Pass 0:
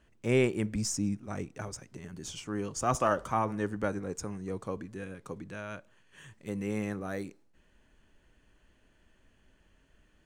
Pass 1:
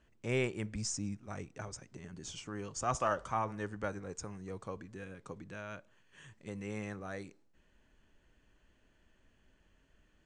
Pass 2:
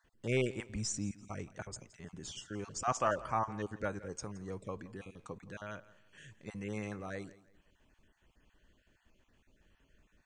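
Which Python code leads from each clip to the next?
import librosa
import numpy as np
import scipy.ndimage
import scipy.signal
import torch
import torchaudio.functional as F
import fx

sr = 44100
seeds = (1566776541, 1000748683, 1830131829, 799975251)

y1 = fx.dynamic_eq(x, sr, hz=270.0, q=0.77, threshold_db=-43.0, ratio=4.0, max_db=-6)
y1 = scipy.signal.sosfilt(scipy.signal.butter(6, 8600.0, 'lowpass', fs=sr, output='sos'), y1)
y1 = y1 * librosa.db_to_amplitude(-3.5)
y2 = fx.spec_dropout(y1, sr, seeds[0], share_pct=22)
y2 = fx.echo_feedback(y2, sr, ms=169, feedback_pct=30, wet_db=-19.0)
y2 = y2 * librosa.db_to_amplitude(1.0)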